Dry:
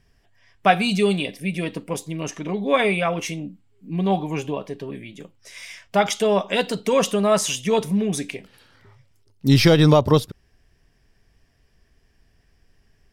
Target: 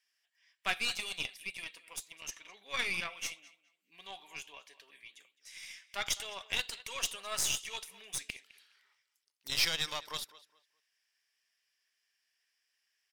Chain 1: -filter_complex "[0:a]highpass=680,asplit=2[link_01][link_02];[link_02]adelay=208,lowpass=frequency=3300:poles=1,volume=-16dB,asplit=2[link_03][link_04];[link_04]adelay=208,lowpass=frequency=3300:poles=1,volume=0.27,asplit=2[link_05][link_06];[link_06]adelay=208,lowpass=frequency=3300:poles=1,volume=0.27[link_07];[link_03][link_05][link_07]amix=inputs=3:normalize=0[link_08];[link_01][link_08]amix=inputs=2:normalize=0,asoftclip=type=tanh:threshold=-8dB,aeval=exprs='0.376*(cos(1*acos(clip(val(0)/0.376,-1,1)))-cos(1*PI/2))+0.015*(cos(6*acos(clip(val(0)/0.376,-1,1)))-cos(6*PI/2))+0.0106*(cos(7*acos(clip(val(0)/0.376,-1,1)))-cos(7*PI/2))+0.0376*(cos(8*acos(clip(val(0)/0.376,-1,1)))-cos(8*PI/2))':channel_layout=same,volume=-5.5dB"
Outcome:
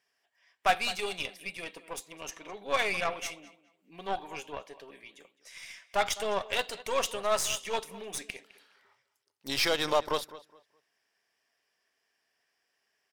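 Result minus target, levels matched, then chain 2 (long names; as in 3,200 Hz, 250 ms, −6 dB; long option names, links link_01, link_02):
500 Hz band +13.0 dB
-filter_complex "[0:a]highpass=2100,asplit=2[link_01][link_02];[link_02]adelay=208,lowpass=frequency=3300:poles=1,volume=-16dB,asplit=2[link_03][link_04];[link_04]adelay=208,lowpass=frequency=3300:poles=1,volume=0.27,asplit=2[link_05][link_06];[link_06]adelay=208,lowpass=frequency=3300:poles=1,volume=0.27[link_07];[link_03][link_05][link_07]amix=inputs=3:normalize=0[link_08];[link_01][link_08]amix=inputs=2:normalize=0,asoftclip=type=tanh:threshold=-8dB,aeval=exprs='0.376*(cos(1*acos(clip(val(0)/0.376,-1,1)))-cos(1*PI/2))+0.015*(cos(6*acos(clip(val(0)/0.376,-1,1)))-cos(6*PI/2))+0.0106*(cos(7*acos(clip(val(0)/0.376,-1,1)))-cos(7*PI/2))+0.0376*(cos(8*acos(clip(val(0)/0.376,-1,1)))-cos(8*PI/2))':channel_layout=same,volume=-5.5dB"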